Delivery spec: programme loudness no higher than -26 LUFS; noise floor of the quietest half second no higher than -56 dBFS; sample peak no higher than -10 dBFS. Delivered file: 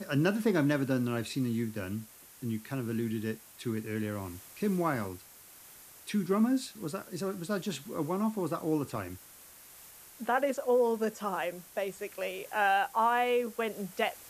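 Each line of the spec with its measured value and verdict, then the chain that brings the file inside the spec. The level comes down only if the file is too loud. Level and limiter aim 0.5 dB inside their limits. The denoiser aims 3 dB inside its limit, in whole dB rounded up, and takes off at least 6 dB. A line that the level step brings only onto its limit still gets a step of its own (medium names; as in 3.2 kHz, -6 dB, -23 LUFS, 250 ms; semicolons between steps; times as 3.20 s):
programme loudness -32.0 LUFS: pass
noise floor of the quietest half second -54 dBFS: fail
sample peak -13.5 dBFS: pass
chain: noise reduction 6 dB, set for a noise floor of -54 dBFS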